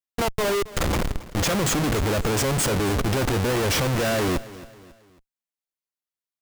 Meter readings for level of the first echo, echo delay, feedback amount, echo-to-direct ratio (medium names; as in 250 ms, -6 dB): -18.0 dB, 273 ms, 42%, -17.0 dB